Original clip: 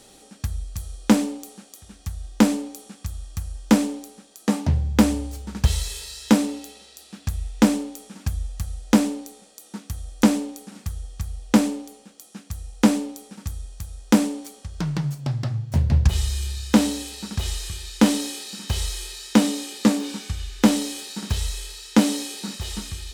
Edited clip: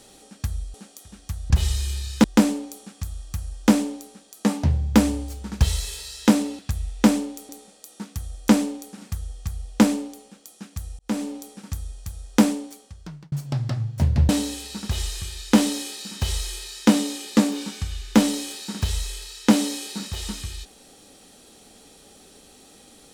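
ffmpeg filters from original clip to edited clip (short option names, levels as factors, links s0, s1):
-filter_complex "[0:a]asplit=9[s0][s1][s2][s3][s4][s5][s6][s7][s8];[s0]atrim=end=0.742[s9];[s1]atrim=start=1.508:end=2.272[s10];[s2]atrim=start=16.028:end=16.772[s11];[s3]atrim=start=2.268:end=6.622[s12];[s4]atrim=start=7.168:end=8.072[s13];[s5]atrim=start=9.228:end=12.73,asetpts=PTS-STARTPTS,afade=t=out:st=3.498:d=0.004:c=hsin[s14];[s6]atrim=start=12.73:end=15.06,asetpts=PTS-STARTPTS,afade=t=in:d=0.4,afade=t=out:st=1.45:d=0.88[s15];[s7]atrim=start=15.06:end=16.032,asetpts=PTS-STARTPTS,afade=t=in:d=0.004:c=hsin[s16];[s8]atrim=start=16.768[s17];[s9][s10]acrossfade=d=0.004:c1=hsin:c2=hsin[s18];[s18][s11]acrossfade=d=0.004:c1=hsin:c2=hsin[s19];[s19][s12]acrossfade=d=0.004:c1=hsin:c2=hsin[s20];[s20][s13]acrossfade=d=0.004:c1=hsin:c2=hsin[s21];[s14][s15][s16]concat=n=3:v=0:a=1[s22];[s21][s22]acrossfade=d=0.004:c1=hsin:c2=hsin[s23];[s23][s17]acrossfade=d=0.004:c1=hsin:c2=hsin"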